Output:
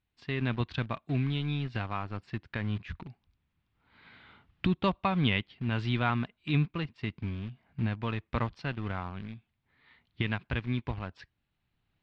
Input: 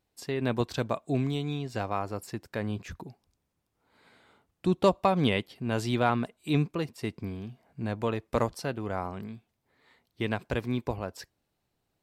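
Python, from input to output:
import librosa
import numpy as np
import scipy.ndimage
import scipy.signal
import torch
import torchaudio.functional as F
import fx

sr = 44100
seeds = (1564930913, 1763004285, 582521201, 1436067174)

p1 = fx.recorder_agc(x, sr, target_db=-19.0, rise_db_per_s=6.5, max_gain_db=30)
p2 = np.where(np.abs(p1) >= 10.0 ** (-33.0 / 20.0), p1, 0.0)
p3 = p1 + F.gain(torch.from_numpy(p2), -5.0).numpy()
p4 = scipy.signal.sosfilt(scipy.signal.butter(4, 3400.0, 'lowpass', fs=sr, output='sos'), p3)
y = fx.peak_eq(p4, sr, hz=510.0, db=-14.5, octaves=2.0)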